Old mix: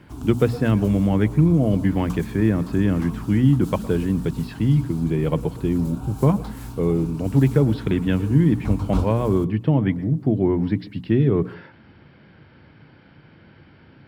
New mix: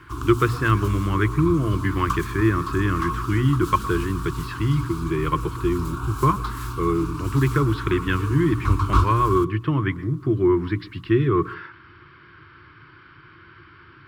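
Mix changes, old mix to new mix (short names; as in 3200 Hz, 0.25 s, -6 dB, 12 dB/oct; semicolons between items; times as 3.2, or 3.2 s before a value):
background +4.5 dB; master: add EQ curve 120 Hz 0 dB, 230 Hz -14 dB, 350 Hz +5 dB, 510 Hz -13 dB, 800 Hz -12 dB, 1100 Hz +15 dB, 1900 Hz +5 dB, 10000 Hz -1 dB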